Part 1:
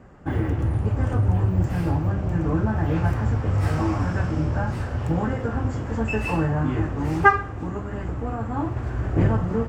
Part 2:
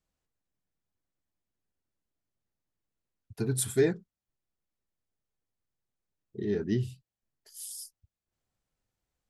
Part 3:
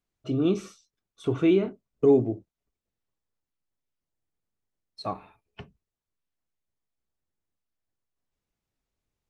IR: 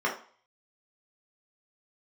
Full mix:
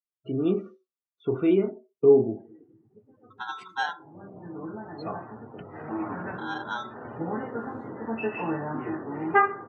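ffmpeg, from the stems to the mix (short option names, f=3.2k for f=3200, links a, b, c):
-filter_complex "[0:a]highpass=230,adelay=2100,volume=-3.5dB,afade=t=in:st=3.89:d=0.43:silence=0.266073,afade=t=in:st=5.72:d=0.41:silence=0.446684,asplit=2[a][b];[b]volume=-16.5dB[c];[1:a]aeval=exprs='val(0)*sgn(sin(2*PI*1200*n/s))':c=same,volume=-3.5dB,asplit=3[d][e][f];[e]volume=-22.5dB[g];[2:a]volume=-1.5dB,asplit=2[h][i];[i]volume=-15.5dB[j];[f]apad=whole_len=519683[k];[a][k]sidechaincompress=threshold=-39dB:ratio=8:attack=5.9:release=255[l];[3:a]atrim=start_sample=2205[m];[c][g][j]amix=inputs=3:normalize=0[n];[n][m]afir=irnorm=-1:irlink=0[o];[l][d][h][o]amix=inputs=4:normalize=0,highpass=140,lowpass=3.1k,afftdn=nr=25:nf=-46"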